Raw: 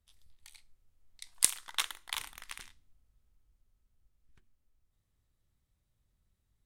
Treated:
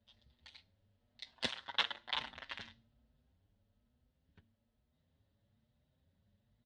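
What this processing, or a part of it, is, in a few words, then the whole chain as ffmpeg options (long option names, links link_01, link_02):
barber-pole flanger into a guitar amplifier: -filter_complex "[0:a]asplit=2[link_01][link_02];[link_02]adelay=6.7,afreqshift=1.1[link_03];[link_01][link_03]amix=inputs=2:normalize=1,asoftclip=type=tanh:threshold=-18.5dB,highpass=86,equalizer=frequency=90:width_type=q:width=4:gain=4,equalizer=frequency=230:width_type=q:width=4:gain=9,equalizer=frequency=340:width_type=q:width=4:gain=-4,equalizer=frequency=580:width_type=q:width=4:gain=7,equalizer=frequency=1200:width_type=q:width=4:gain=-8,equalizer=frequency=2300:width_type=q:width=4:gain=-8,lowpass=frequency=4000:width=0.5412,lowpass=frequency=4000:width=1.3066,asettb=1/sr,asplit=3[link_04][link_05][link_06];[link_04]atrim=end=1.334[link_07];[link_05]atrim=start=1.33:end=2.57,asetpts=PTS-STARTPTS,afade=type=in:duration=0.004:curve=qsin,afade=type=out:start_time=1.236:duration=0.004:curve=qsin,equalizer=frequency=6700:width=1:gain=-4.5[link_08];[link_06]atrim=start=2.566[link_09];[link_07][link_08]acrossfade=duration=0.004:curve1=hsin:curve2=qsin[link_10];[link_10][link_09]acrossfade=duration=0.004:curve1=qsin:curve2=hsin,volume=8dB"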